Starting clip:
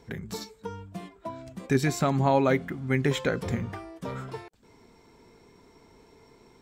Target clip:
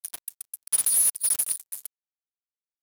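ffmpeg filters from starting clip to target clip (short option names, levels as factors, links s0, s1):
-filter_complex "[0:a]afftfilt=real='real(if(lt(b,736),b+184*(1-2*mod(floor(b/184),2)),b),0)':imag='imag(if(lt(b,736),b+184*(1-2*mod(floor(b/184),2)),b),0)':win_size=2048:overlap=0.75,asplit=2[s0][s1];[s1]acompressor=threshold=0.0126:ratio=10,volume=1.26[s2];[s0][s2]amix=inputs=2:normalize=0,highpass=140,asetrate=103194,aresample=44100,acrusher=bits=3:mix=0:aa=0.5"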